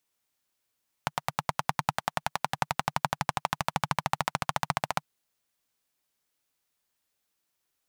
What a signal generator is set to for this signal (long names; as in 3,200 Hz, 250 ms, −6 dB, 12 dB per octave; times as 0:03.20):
pulse-train model of a single-cylinder engine, changing speed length 3.96 s, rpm 1,100, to 1,800, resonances 150/850 Hz